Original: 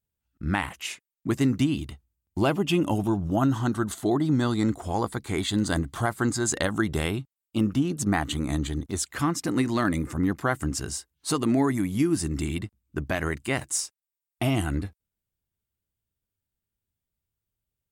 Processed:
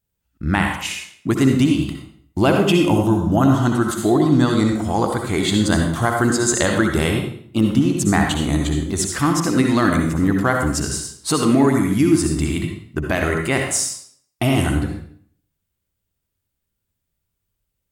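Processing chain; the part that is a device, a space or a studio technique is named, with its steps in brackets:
bathroom (convolution reverb RT60 0.55 s, pre-delay 57 ms, DRR 2 dB)
level +6.5 dB

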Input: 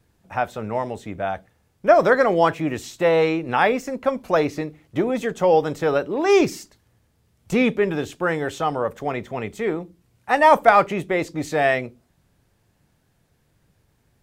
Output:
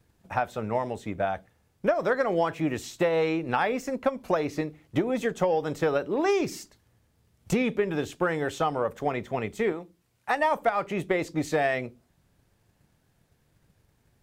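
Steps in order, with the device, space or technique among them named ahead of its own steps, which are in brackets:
drum-bus smash (transient designer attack +5 dB, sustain 0 dB; downward compressor 10 to 1, threshold −17 dBFS, peak gain reduction 14.5 dB; soft clipping −7 dBFS, distortion −28 dB)
0:09.72–0:10.36: low-shelf EQ 380 Hz −9 dB
level −3 dB

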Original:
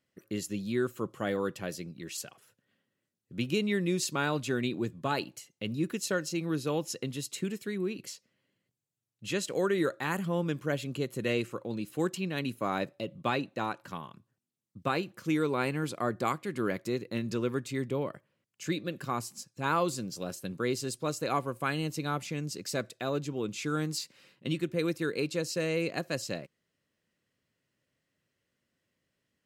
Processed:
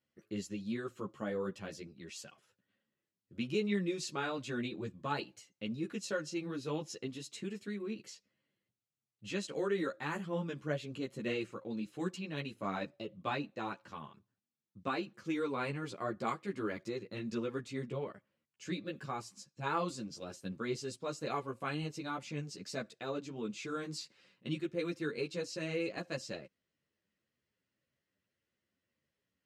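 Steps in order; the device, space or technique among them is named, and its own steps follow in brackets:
0:01.11–0:01.54: dynamic equaliser 3,100 Hz, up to −7 dB, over −54 dBFS, Q 1
string-machine ensemble chorus (string-ensemble chorus; low-pass filter 6,800 Hz 12 dB per octave)
level −3 dB

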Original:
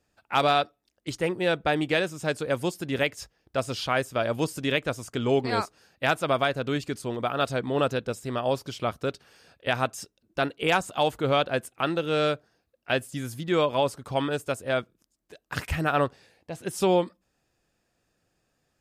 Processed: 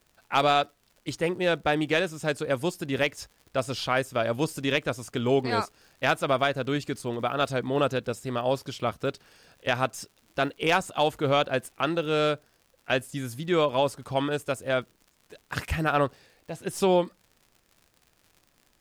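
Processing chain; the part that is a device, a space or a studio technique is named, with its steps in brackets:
record under a worn stylus (stylus tracing distortion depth 0.021 ms; surface crackle 82 per second −44 dBFS; pink noise bed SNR 42 dB)

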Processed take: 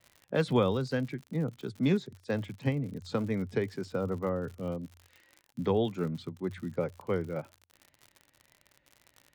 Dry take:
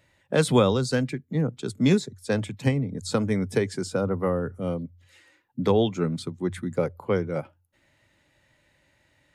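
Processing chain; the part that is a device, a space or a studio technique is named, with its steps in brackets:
lo-fi chain (low-pass filter 3,800 Hz 12 dB per octave; tape wow and flutter; surface crackle 83 per second −34 dBFS)
level −6.5 dB

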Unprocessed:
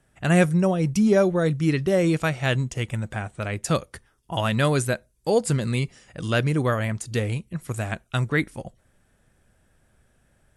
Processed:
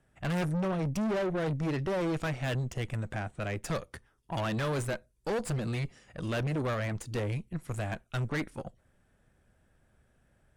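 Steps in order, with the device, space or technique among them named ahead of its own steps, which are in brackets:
tube preamp driven hard (tube saturation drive 28 dB, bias 0.7; high-shelf EQ 3,700 Hz −7 dB)

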